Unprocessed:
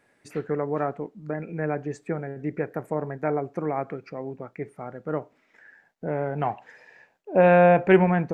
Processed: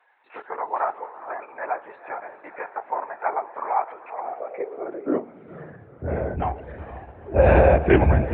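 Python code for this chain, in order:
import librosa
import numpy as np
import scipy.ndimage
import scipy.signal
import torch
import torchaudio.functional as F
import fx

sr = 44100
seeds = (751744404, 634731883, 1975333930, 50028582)

y = fx.echo_diffused(x, sr, ms=467, feedback_pct=48, wet_db=-12.0)
y = fx.lpc_vocoder(y, sr, seeds[0], excitation='whisper', order=16)
y = fx.filter_sweep_highpass(y, sr, from_hz=890.0, to_hz=66.0, start_s=4.18, end_s=6.28, q=4.2)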